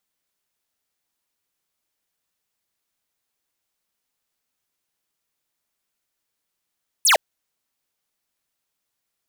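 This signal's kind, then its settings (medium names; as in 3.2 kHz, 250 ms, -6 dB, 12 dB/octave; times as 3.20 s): laser zap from 12 kHz, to 520 Hz, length 0.11 s square, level -14.5 dB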